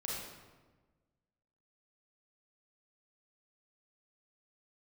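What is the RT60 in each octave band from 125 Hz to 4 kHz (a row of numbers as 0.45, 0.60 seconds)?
1.7, 1.6, 1.4, 1.2, 1.0, 0.85 seconds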